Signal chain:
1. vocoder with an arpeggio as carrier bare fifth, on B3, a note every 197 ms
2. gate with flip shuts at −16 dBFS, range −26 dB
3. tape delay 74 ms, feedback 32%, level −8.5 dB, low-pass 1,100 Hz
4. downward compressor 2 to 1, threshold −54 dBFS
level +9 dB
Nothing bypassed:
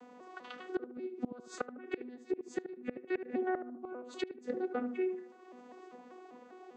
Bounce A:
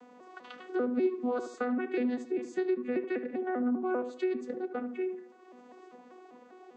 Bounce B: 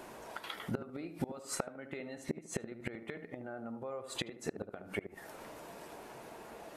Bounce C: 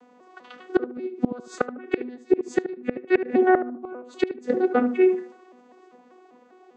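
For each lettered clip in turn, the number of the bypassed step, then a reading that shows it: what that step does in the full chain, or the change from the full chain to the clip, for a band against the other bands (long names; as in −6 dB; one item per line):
2, change in momentary loudness spread −11 LU
1, 4 kHz band +10.5 dB
4, average gain reduction 10.5 dB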